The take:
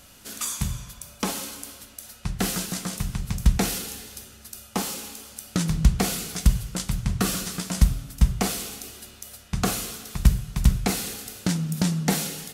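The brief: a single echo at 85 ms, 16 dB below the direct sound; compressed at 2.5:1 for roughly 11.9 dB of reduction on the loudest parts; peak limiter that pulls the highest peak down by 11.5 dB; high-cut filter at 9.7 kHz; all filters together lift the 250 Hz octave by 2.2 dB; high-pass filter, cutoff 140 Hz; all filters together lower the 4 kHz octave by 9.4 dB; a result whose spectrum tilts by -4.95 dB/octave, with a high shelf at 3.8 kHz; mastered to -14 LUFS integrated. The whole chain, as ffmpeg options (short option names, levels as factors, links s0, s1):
-af "highpass=140,lowpass=9700,equalizer=f=250:t=o:g=5,highshelf=f=3800:g=-5.5,equalizer=f=4000:t=o:g=-8.5,acompressor=threshold=0.0141:ratio=2.5,alimiter=level_in=1.68:limit=0.0631:level=0:latency=1,volume=0.596,aecho=1:1:85:0.158,volume=23.7"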